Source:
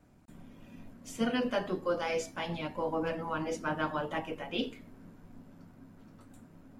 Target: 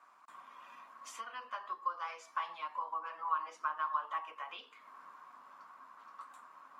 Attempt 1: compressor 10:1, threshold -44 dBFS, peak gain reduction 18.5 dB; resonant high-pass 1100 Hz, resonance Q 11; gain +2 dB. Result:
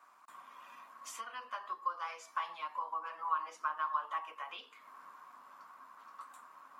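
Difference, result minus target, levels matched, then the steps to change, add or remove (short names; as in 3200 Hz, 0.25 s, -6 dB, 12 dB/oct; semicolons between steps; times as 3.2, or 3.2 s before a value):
8000 Hz band +3.5 dB
add after resonant high-pass: high shelf 9000 Hz -10.5 dB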